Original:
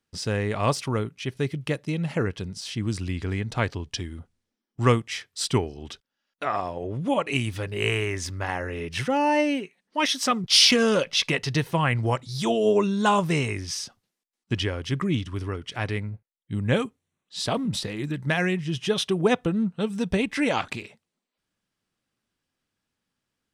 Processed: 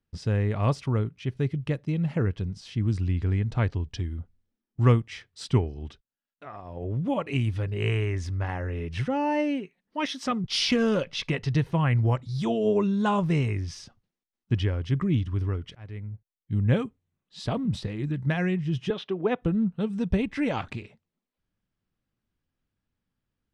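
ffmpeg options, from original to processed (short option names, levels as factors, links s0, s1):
-filter_complex "[0:a]asettb=1/sr,asplit=3[s0][s1][s2];[s0]atrim=end=18.904[s3];[s1]atrim=start=18.9:end=19.42,asetpts=PTS-STARTPTS,afade=t=in:d=0.004:c=qsin,afade=t=out:st=0.516:d=0.004:c=qsin,acrossover=split=230 4100:gain=0.0794 1 0.0891[s4][s5][s6];[s4][s5][s6]amix=inputs=3:normalize=0[s7];[s2]atrim=start=19.416[s8];[s3][s7]acrossfade=d=0.004:c1=hsin:c2=qsin[s9];[s9][s8]acrossfade=d=0.004:c1=qsin:c2=hsin,asplit=4[s10][s11][s12][s13];[s10]atrim=end=6.03,asetpts=PTS-STARTPTS,afade=t=out:st=5.85:d=0.18:silence=0.316228[s14];[s11]atrim=start=6.03:end=6.64,asetpts=PTS-STARTPTS,volume=0.316[s15];[s12]atrim=start=6.64:end=15.75,asetpts=PTS-STARTPTS,afade=t=in:d=0.18:silence=0.316228,afade=t=out:st=9.106:d=0.004:c=hsin:silence=0.0668344[s16];[s13]atrim=start=15.75,asetpts=PTS-STARTPTS,afade=t=in:d=0.84:silence=0.0668344[s17];[s14][s15][s16][s17]concat=n=4:v=0:a=1,aemphasis=mode=reproduction:type=bsi,volume=0.531"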